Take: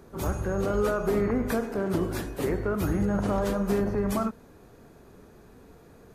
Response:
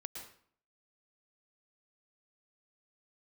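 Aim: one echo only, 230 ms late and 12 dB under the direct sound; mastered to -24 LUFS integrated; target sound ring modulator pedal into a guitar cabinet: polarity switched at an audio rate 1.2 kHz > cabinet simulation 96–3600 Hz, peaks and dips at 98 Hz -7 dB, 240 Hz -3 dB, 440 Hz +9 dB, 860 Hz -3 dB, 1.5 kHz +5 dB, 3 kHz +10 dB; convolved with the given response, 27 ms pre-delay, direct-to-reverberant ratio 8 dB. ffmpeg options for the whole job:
-filter_complex "[0:a]aecho=1:1:230:0.251,asplit=2[s0][s1];[1:a]atrim=start_sample=2205,adelay=27[s2];[s1][s2]afir=irnorm=-1:irlink=0,volume=0.531[s3];[s0][s3]amix=inputs=2:normalize=0,aeval=exprs='val(0)*sgn(sin(2*PI*1200*n/s))':c=same,highpass=96,equalizer=f=98:t=q:w=4:g=-7,equalizer=f=240:t=q:w=4:g=-3,equalizer=f=440:t=q:w=4:g=9,equalizer=f=860:t=q:w=4:g=-3,equalizer=f=1500:t=q:w=4:g=5,equalizer=f=3000:t=q:w=4:g=10,lowpass=f=3600:w=0.5412,lowpass=f=3600:w=1.3066,volume=0.891"

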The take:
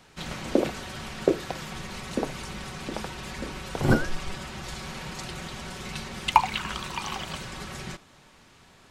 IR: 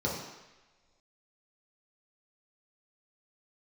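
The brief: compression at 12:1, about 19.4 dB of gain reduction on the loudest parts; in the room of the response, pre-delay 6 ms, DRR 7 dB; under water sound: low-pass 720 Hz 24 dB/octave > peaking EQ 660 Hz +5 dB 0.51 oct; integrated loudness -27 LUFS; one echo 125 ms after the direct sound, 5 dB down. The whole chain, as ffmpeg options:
-filter_complex "[0:a]acompressor=threshold=0.0251:ratio=12,aecho=1:1:125:0.562,asplit=2[s0][s1];[1:a]atrim=start_sample=2205,adelay=6[s2];[s1][s2]afir=irnorm=-1:irlink=0,volume=0.178[s3];[s0][s3]amix=inputs=2:normalize=0,lowpass=f=720:w=0.5412,lowpass=f=720:w=1.3066,equalizer=f=660:t=o:w=0.51:g=5,volume=3.35"

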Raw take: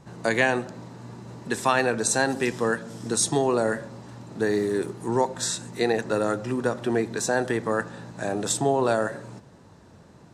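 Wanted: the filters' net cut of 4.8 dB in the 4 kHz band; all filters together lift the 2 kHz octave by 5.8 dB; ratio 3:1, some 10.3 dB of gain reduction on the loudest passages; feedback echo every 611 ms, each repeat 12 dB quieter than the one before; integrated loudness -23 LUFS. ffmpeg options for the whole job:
-af "equalizer=f=2000:t=o:g=9,equalizer=f=4000:t=o:g=-8.5,acompressor=threshold=0.0501:ratio=3,aecho=1:1:611|1222|1833:0.251|0.0628|0.0157,volume=2.24"

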